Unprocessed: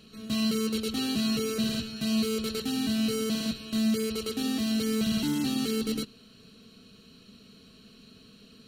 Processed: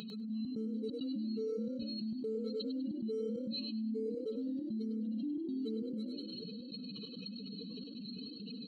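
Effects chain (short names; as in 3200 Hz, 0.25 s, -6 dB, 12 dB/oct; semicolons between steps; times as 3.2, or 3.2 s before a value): spectral contrast raised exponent 3.2; HPF 1300 Hz 6 dB/oct; step gate "xxxx.xxx.xx" 134 bpm -24 dB; on a send: frequency-shifting echo 0.1 s, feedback 41%, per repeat +34 Hz, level -9.5 dB; on the sum: fast leveller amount 70%; gain +3 dB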